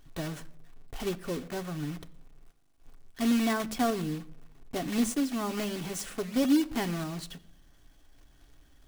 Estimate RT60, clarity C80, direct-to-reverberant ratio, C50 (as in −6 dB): non-exponential decay, 21.0 dB, 8.0 dB, 19.5 dB